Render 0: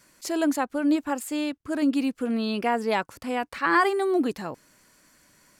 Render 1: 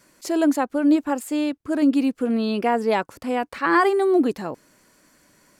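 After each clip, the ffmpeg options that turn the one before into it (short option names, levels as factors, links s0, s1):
-af "equalizer=f=390:t=o:w=2.5:g=5.5"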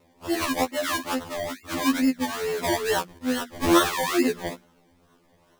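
-af "bandreject=f=60:t=h:w=6,bandreject=f=120:t=h:w=6,bandreject=f=180:t=h:w=6,bandreject=f=240:t=h:w=6,bandreject=f=300:t=h:w=6,bandreject=f=360:t=h:w=6,acrusher=samples=26:mix=1:aa=0.000001:lfo=1:lforange=15.6:lforate=2.3,afftfilt=real='re*2*eq(mod(b,4),0)':imag='im*2*eq(mod(b,4),0)':win_size=2048:overlap=0.75"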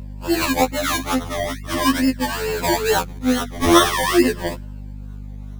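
-af "afftfilt=real='re*pow(10,7/40*sin(2*PI*(1.3*log(max(b,1)*sr/1024/100)/log(2)-(-0.44)*(pts-256)/sr)))':imag='im*pow(10,7/40*sin(2*PI*(1.3*log(max(b,1)*sr/1024/100)/log(2)-(-0.44)*(pts-256)/sr)))':win_size=1024:overlap=0.75,aeval=exprs='val(0)+0.0141*(sin(2*PI*50*n/s)+sin(2*PI*2*50*n/s)/2+sin(2*PI*3*50*n/s)/3+sin(2*PI*4*50*n/s)/4+sin(2*PI*5*50*n/s)/5)':c=same,volume=1.88"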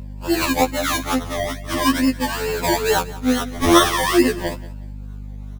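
-af "aecho=1:1:182|364:0.112|0.0281"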